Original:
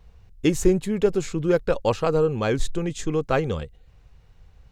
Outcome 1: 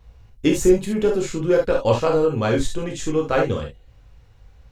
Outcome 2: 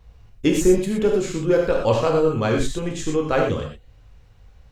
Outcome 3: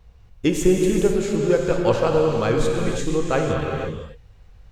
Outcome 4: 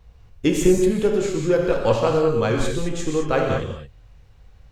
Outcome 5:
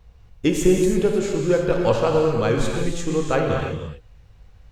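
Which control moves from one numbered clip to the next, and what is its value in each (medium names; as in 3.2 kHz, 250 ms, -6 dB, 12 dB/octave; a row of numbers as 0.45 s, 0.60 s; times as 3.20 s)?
gated-style reverb, gate: 90 ms, 140 ms, 530 ms, 240 ms, 360 ms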